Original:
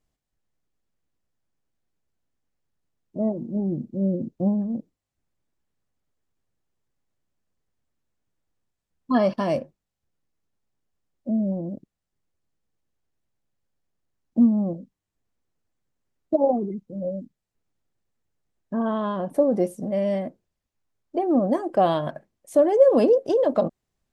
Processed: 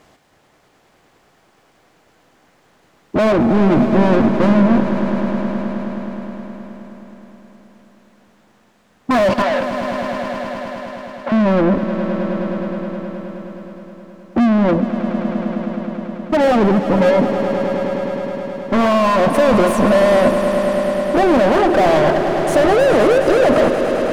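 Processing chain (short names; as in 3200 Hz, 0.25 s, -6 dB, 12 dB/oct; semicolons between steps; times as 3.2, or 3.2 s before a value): 16.44–17.1 tilt -3 dB/oct; vocal rider 2 s; overdrive pedal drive 42 dB, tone 1300 Hz, clips at -6.5 dBFS; 9.42–11.32 BPF 690–4900 Hz; swelling echo 0.105 s, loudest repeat 5, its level -12.5 dB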